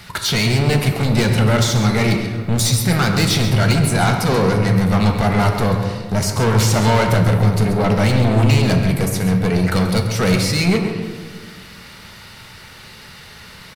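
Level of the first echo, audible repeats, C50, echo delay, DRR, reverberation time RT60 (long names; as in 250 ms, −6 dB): −10.5 dB, 1, 4.5 dB, 135 ms, 2.5 dB, 1.6 s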